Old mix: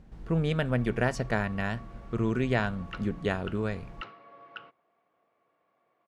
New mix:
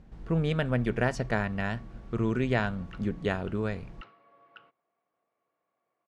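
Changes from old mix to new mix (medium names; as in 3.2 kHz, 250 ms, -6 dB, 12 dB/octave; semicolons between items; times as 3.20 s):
background -8.5 dB; master: add treble shelf 12 kHz -10 dB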